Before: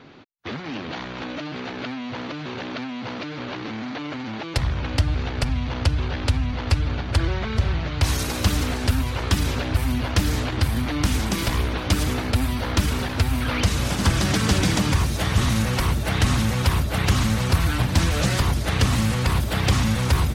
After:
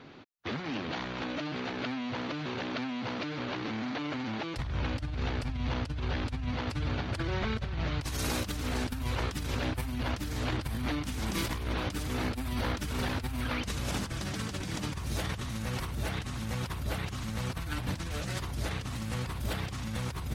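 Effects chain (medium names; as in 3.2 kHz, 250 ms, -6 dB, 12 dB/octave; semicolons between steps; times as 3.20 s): 6.47–7.44 s: high-pass 78 Hz 12 dB/octave; compressor with a negative ratio -26 dBFS, ratio -1; trim -7.5 dB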